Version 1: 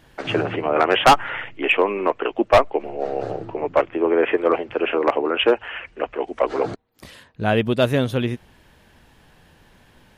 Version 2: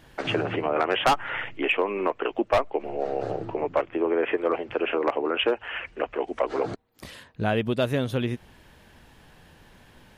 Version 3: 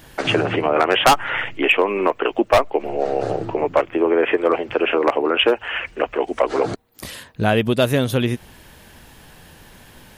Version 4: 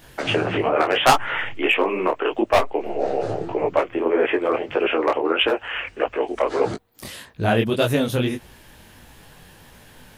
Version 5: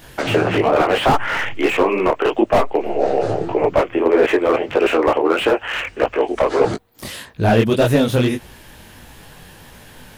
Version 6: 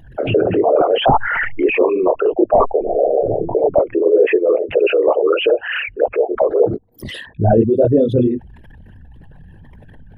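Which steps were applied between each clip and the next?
downward compressor 2 to 1, threshold −25 dBFS, peak gain reduction 9 dB
high-shelf EQ 6,800 Hz +11.5 dB; level +7 dB
micro pitch shift up and down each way 57 cents; level +1.5 dB
slew-rate limiting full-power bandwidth 120 Hz; level +5.5 dB
spectral envelope exaggerated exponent 3; level +2 dB

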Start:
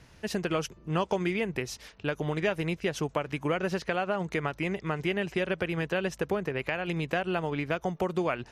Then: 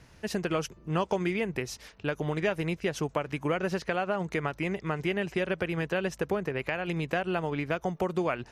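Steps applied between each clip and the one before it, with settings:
parametric band 3,300 Hz −2 dB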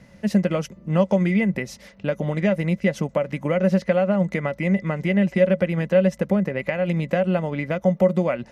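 hollow resonant body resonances 200/550/2,000 Hz, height 17 dB, ringing for 65 ms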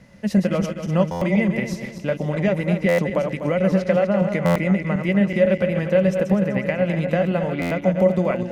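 feedback delay that plays each chunk backwards 124 ms, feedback 63%, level −6.5 dB
buffer that repeats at 0:01.11/0:02.88/0:04.45/0:07.61, samples 512, times 8

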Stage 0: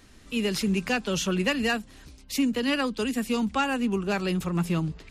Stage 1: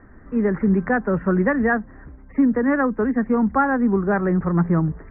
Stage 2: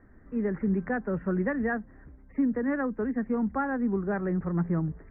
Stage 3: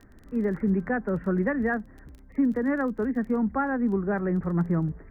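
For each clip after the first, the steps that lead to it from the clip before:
Butterworth low-pass 1,900 Hz 72 dB per octave; level +7.5 dB
parametric band 1,100 Hz −4.5 dB 0.98 octaves; level −8.5 dB
surface crackle 18 per second −42 dBFS; level +2.5 dB

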